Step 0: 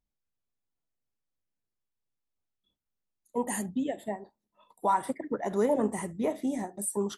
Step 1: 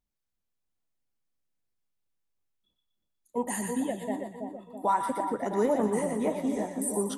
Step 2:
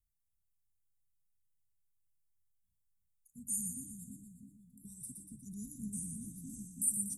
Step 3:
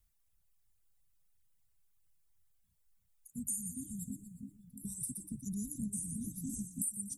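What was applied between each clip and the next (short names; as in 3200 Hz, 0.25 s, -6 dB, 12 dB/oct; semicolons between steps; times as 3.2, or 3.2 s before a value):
split-band echo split 970 Hz, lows 0.328 s, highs 0.12 s, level -5 dB
inverse Chebyshev band-stop 520–2300 Hz, stop band 70 dB; gain +2 dB
reverb removal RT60 1.1 s; compressor 6:1, threshold -46 dBFS, peak gain reduction 17.5 dB; gain +10.5 dB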